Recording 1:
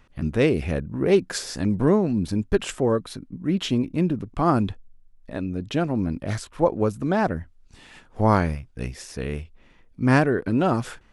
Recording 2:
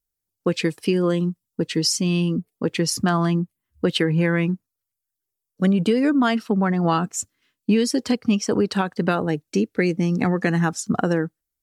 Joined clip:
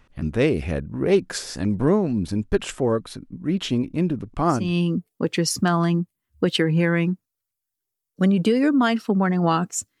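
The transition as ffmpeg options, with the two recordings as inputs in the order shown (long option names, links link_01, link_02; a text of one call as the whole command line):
ffmpeg -i cue0.wav -i cue1.wav -filter_complex "[0:a]apad=whole_dur=10,atrim=end=10,atrim=end=4.78,asetpts=PTS-STARTPTS[link_01];[1:a]atrim=start=1.89:end=7.41,asetpts=PTS-STARTPTS[link_02];[link_01][link_02]acrossfade=duration=0.3:curve1=tri:curve2=tri" out.wav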